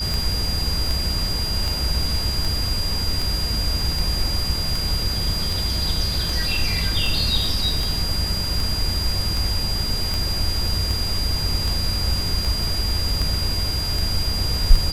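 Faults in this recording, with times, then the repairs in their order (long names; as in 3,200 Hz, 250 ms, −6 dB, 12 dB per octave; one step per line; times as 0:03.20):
scratch tick 78 rpm
whistle 4,800 Hz −25 dBFS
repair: click removal
notch filter 4,800 Hz, Q 30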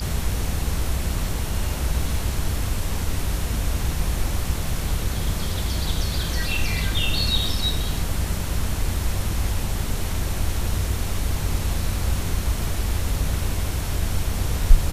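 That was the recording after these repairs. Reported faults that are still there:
none of them is left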